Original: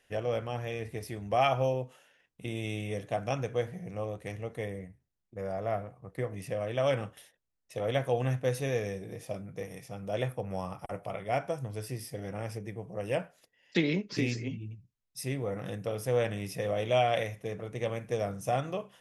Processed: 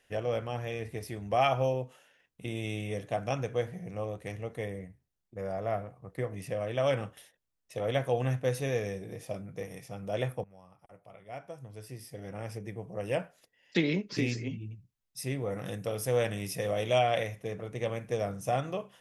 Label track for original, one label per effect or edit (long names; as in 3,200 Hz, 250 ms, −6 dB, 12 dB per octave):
10.440000	12.730000	fade in quadratic, from −20 dB
15.500000	16.990000	high-shelf EQ 4,800 Hz +7.5 dB